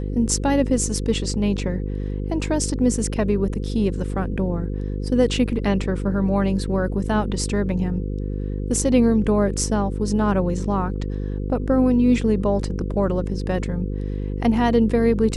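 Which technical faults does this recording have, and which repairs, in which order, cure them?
mains buzz 50 Hz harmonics 10 −26 dBFS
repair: hum removal 50 Hz, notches 10

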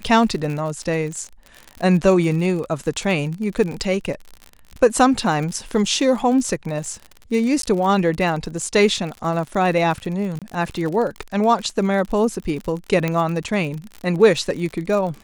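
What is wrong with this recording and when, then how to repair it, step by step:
surface crackle 59 per second −27 dBFS
0:07.62–0:07.63: drop-out 13 ms
0:10.39–0:10.42: drop-out 27 ms
0:13.08: click −9 dBFS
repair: click removal
repair the gap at 0:07.62, 13 ms
repair the gap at 0:10.39, 27 ms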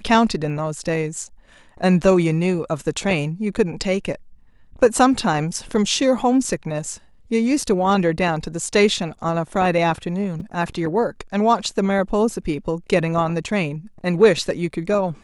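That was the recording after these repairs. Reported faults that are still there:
none of them is left

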